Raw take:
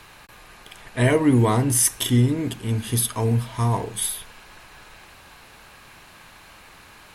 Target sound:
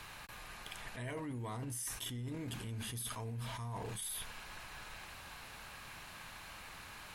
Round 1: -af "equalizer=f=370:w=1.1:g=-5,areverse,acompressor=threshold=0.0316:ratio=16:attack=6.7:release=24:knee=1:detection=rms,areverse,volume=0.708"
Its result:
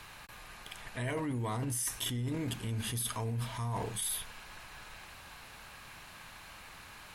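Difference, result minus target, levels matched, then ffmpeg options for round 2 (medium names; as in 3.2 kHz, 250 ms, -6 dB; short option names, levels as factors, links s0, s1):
compression: peak gain reduction -7 dB
-af "equalizer=f=370:w=1.1:g=-5,areverse,acompressor=threshold=0.0133:ratio=16:attack=6.7:release=24:knee=1:detection=rms,areverse,volume=0.708"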